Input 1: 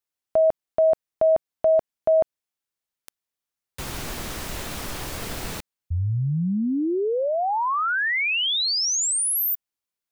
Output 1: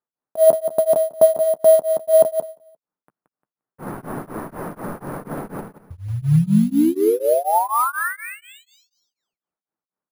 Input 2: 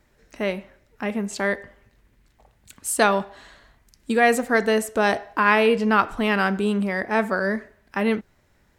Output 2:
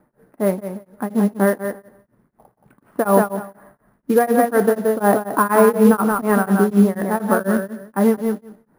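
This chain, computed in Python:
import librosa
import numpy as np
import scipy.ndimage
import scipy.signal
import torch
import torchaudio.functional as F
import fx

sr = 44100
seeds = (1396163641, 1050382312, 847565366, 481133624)

p1 = scipy.signal.sosfilt(scipy.signal.butter(4, 1400.0, 'lowpass', fs=sr, output='sos'), x)
p2 = fx.low_shelf_res(p1, sr, hz=110.0, db=-13.5, q=1.5)
p3 = fx.quant_float(p2, sr, bits=2)
p4 = p2 + (p3 * librosa.db_to_amplitude(-7.0))
p5 = fx.chorus_voices(p4, sr, voices=4, hz=1.0, base_ms=11, depth_ms=4.6, mix_pct=20)
p6 = p5 + fx.echo_feedback(p5, sr, ms=175, feedback_pct=16, wet_db=-6.5, dry=0)
p7 = np.repeat(p6[::4], 4)[:len(p6)]
p8 = p7 * np.abs(np.cos(np.pi * 4.1 * np.arange(len(p7)) / sr))
y = p8 * librosa.db_to_amplitude(5.5)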